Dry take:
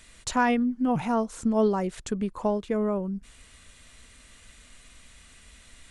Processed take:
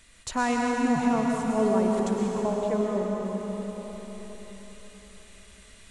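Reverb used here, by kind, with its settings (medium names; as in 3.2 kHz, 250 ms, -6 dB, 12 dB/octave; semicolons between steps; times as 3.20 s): algorithmic reverb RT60 4.6 s, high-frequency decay 1×, pre-delay 75 ms, DRR -2 dB; trim -3.5 dB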